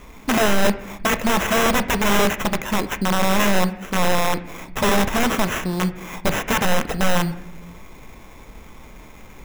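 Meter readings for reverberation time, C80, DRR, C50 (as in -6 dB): 0.85 s, 17.0 dB, 9.5 dB, 14.5 dB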